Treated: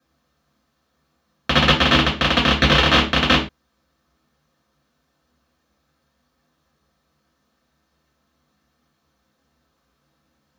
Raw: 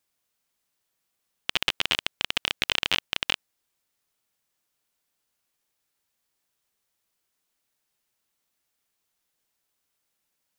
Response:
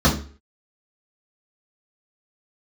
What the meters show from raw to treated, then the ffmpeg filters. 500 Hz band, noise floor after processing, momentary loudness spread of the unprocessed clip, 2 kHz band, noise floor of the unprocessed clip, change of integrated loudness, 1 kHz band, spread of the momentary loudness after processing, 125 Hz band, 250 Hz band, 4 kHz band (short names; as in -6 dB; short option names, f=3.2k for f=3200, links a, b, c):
+19.0 dB, -70 dBFS, 5 LU, +10.5 dB, -79 dBFS, +10.5 dB, +17.0 dB, 6 LU, +25.5 dB, +24.5 dB, +8.5 dB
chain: -filter_complex "[0:a]bass=f=250:g=-4,treble=f=4k:g=-7[a];[1:a]atrim=start_sample=2205,afade=t=out:st=0.19:d=0.01,atrim=end_sample=8820[b];[a][b]afir=irnorm=-1:irlink=0,volume=-4dB"